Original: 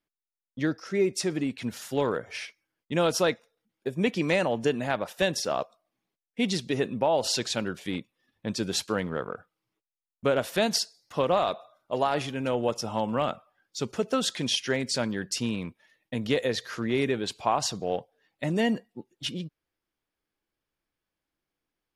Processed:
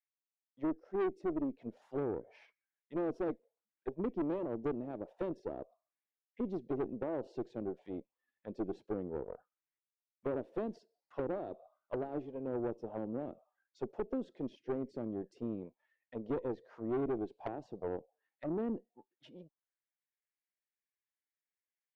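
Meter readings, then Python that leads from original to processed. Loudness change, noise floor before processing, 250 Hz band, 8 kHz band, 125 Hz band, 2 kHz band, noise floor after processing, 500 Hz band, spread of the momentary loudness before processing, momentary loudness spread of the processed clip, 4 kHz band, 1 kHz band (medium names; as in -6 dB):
-11.5 dB, under -85 dBFS, -8.5 dB, under -40 dB, -13.5 dB, -22.5 dB, under -85 dBFS, -10.5 dB, 12 LU, 11 LU, under -35 dB, -16.0 dB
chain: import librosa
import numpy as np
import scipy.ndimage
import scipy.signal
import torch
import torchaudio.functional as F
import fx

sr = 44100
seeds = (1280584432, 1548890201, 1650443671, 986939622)

y = fx.peak_eq(x, sr, hz=1300.0, db=-9.5, octaves=0.92)
y = fx.auto_wah(y, sr, base_hz=340.0, top_hz=1900.0, q=3.1, full_db=-26.5, direction='down')
y = fx.high_shelf(y, sr, hz=2700.0, db=-9.5)
y = fx.tube_stage(y, sr, drive_db=31.0, bias=0.55)
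y = F.gain(torch.from_numpy(y), 1.5).numpy()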